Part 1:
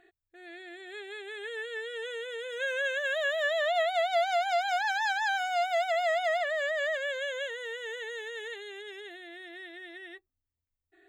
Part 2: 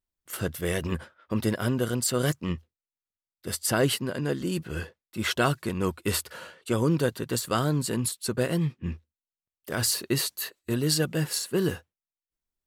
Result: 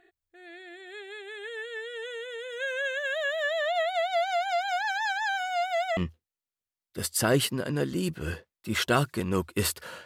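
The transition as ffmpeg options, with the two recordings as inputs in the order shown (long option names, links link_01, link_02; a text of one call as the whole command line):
ffmpeg -i cue0.wav -i cue1.wav -filter_complex "[0:a]apad=whole_dur=10.05,atrim=end=10.05,atrim=end=5.972[link_01];[1:a]atrim=start=2.458:end=6.54[link_02];[link_01][link_02]acrossfade=duration=0.004:curve1=hsin:curve2=hsin" out.wav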